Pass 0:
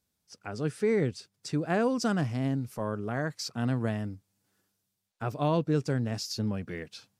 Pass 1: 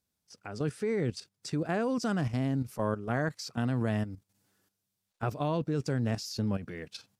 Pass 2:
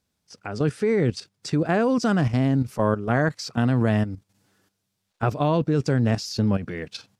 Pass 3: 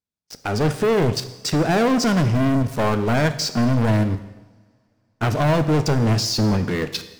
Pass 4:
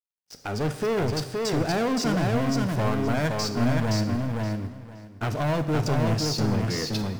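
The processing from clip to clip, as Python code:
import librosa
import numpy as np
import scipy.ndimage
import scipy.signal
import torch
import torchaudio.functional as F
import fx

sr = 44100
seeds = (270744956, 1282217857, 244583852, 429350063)

y1 = fx.level_steps(x, sr, step_db=11)
y1 = F.gain(torch.from_numpy(y1), 4.0).numpy()
y2 = fx.high_shelf(y1, sr, hz=9500.0, db=-11.5)
y2 = F.gain(torch.from_numpy(y2), 9.0).numpy()
y3 = fx.leveller(y2, sr, passes=5)
y3 = fx.rev_double_slope(y3, sr, seeds[0], early_s=0.99, late_s=3.2, knee_db=-24, drr_db=9.5)
y3 = F.gain(torch.from_numpy(y3), -8.0).numpy()
y4 = fx.law_mismatch(y3, sr, coded='mu')
y4 = fx.echo_feedback(y4, sr, ms=520, feedback_pct=18, wet_db=-3)
y4 = F.gain(torch.from_numpy(y4), -7.5).numpy()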